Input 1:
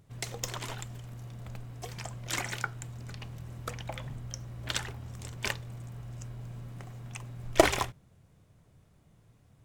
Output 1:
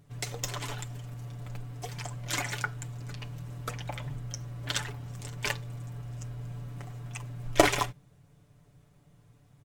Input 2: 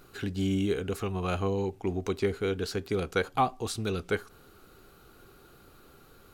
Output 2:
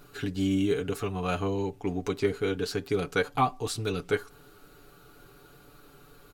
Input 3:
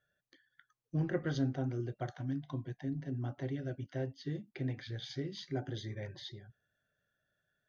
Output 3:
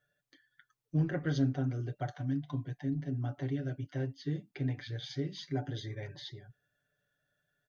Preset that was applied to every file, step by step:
comb 6.9 ms, depth 65%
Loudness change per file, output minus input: +1.5 LU, +1.0 LU, +3.0 LU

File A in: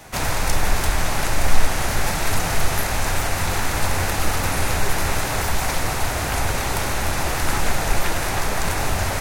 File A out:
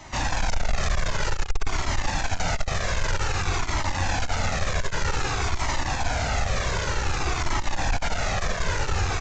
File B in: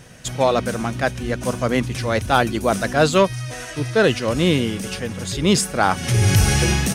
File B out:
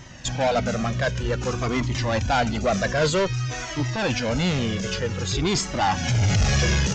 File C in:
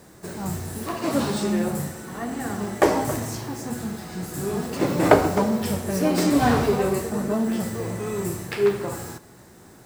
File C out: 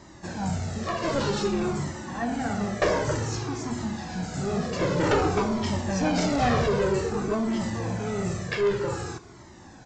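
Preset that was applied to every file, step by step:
valve stage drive 20 dB, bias 0.2; resampled via 16 kHz; Shepard-style flanger falling 0.53 Hz; peak normalisation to -12 dBFS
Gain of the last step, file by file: +4.5 dB, +6.5 dB, +6.5 dB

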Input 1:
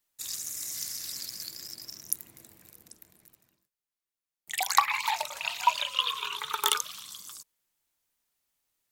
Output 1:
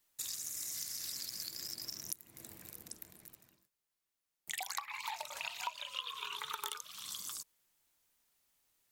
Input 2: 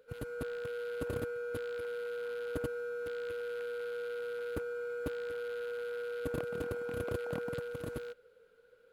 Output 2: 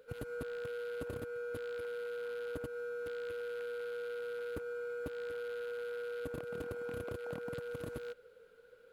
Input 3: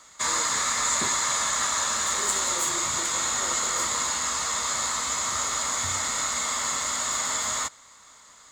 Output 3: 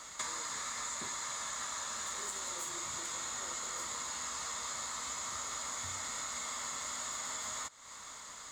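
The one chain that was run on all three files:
compression 8:1, threshold -41 dBFS; trim +3 dB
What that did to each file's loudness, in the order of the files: -11.0 LU, -2.5 LU, -13.5 LU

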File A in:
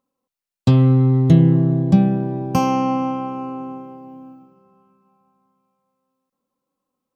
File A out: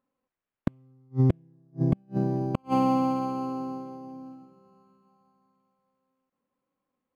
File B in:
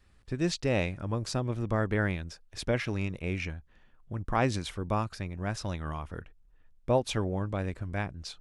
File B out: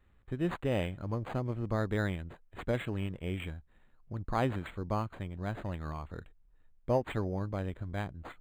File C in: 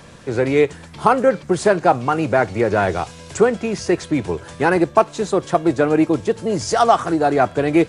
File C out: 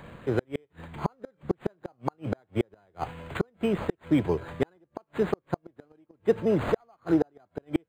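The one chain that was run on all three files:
inverted gate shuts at -8 dBFS, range -41 dB; decimation joined by straight lines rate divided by 8×; trim -3 dB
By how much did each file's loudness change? -11.5 LU, -3.5 LU, -12.0 LU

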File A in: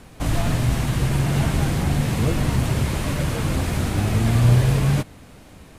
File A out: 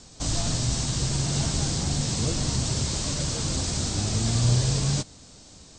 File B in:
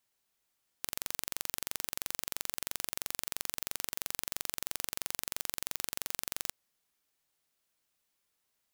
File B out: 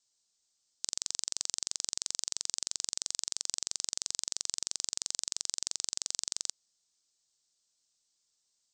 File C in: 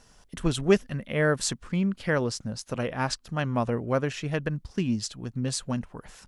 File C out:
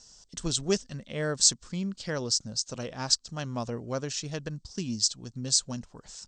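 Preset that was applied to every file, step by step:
steep low-pass 8.4 kHz 96 dB/octave; resonant high shelf 3.4 kHz +13.5 dB, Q 1.5; trim -6.5 dB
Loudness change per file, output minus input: -4.5 LU, +2.5 LU, -1.0 LU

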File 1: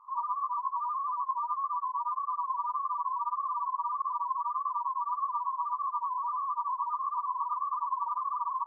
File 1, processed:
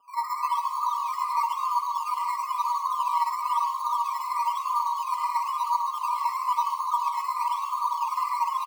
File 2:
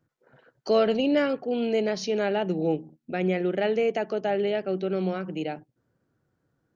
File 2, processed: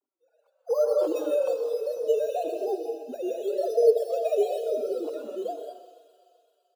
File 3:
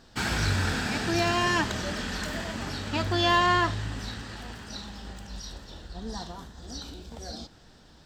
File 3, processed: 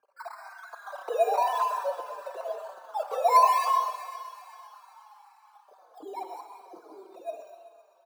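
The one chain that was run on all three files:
formants replaced by sine waves; steep low-pass 1.2 kHz 36 dB/octave; in parallel at -8 dB: decimation with a swept rate 11×, swing 60% 1 Hz; on the sum: high-pass 210 Hz 12 dB/octave; on a send: thinning echo 128 ms, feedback 77%, high-pass 290 Hz, level -11.5 dB; on the sum: gated-style reverb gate 230 ms rising, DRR 3.5 dB; dynamic bell 690 Hz, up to +4 dB, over -36 dBFS, Q 0.95; endless flanger 4.5 ms -2.3 Hz; normalise loudness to -27 LUFS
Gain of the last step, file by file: +2.5 dB, -5.5 dB, -2.0 dB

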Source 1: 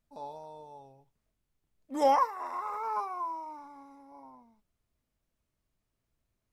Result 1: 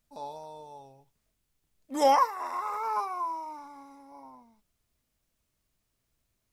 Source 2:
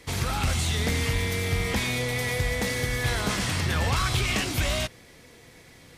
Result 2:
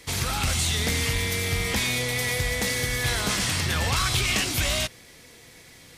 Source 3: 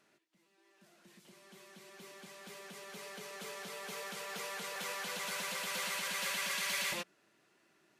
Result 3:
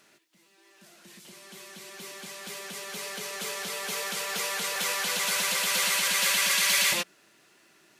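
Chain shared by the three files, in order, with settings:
treble shelf 2.3 kHz +7.5 dB; peak normalisation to -12 dBFS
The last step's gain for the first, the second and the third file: +1.5 dB, -1.0 dB, +7.5 dB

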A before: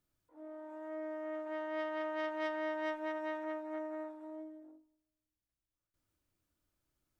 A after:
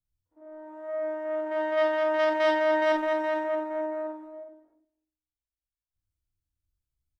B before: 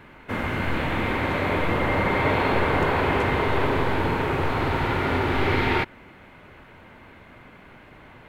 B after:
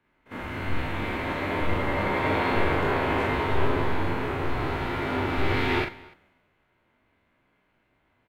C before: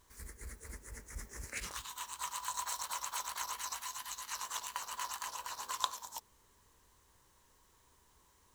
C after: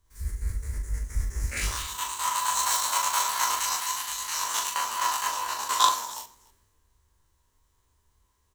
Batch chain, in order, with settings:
spectrogram pixelated in time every 50 ms; multi-tap echo 40/43/94/291 ms -7.5/-7/-18/-15.5 dB; three bands expanded up and down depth 70%; normalise loudness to -27 LUFS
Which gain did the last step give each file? +10.5 dB, -3.5 dB, +13.5 dB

